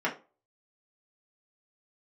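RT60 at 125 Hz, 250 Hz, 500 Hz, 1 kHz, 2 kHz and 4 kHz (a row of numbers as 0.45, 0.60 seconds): 0.30, 0.35, 0.35, 0.30, 0.25, 0.25 seconds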